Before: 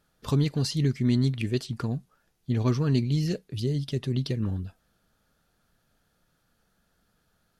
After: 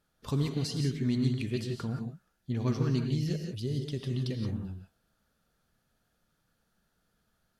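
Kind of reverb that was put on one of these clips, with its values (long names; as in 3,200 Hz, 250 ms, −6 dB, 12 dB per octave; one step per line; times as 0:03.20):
reverb whose tail is shaped and stops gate 200 ms rising, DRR 4 dB
level −6 dB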